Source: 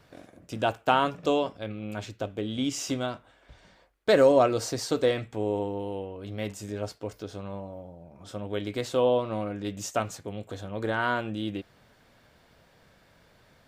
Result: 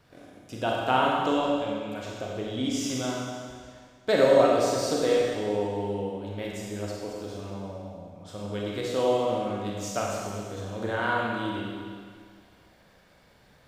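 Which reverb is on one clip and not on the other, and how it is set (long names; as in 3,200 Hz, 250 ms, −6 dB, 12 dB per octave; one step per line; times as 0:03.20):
four-comb reverb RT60 1.9 s, combs from 31 ms, DRR −3 dB
level −3.5 dB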